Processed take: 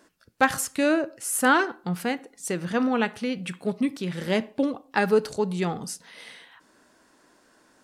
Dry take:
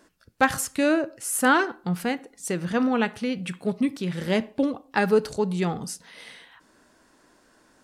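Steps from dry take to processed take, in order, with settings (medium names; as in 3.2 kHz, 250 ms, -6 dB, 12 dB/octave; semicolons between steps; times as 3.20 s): bass shelf 97 Hz -9 dB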